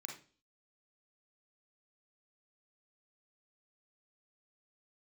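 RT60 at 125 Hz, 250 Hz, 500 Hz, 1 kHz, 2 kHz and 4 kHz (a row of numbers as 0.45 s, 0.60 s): 0.45 s, 0.50 s, 0.45 s, 0.35 s, 0.35 s, 0.45 s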